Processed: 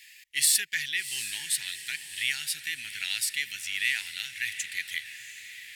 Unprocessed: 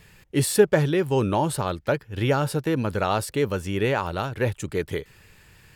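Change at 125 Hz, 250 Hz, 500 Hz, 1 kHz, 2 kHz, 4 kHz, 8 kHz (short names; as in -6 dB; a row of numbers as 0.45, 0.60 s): -34.0 dB, under -35 dB, under -40 dB, -30.0 dB, +2.5 dB, +6.0 dB, +6.0 dB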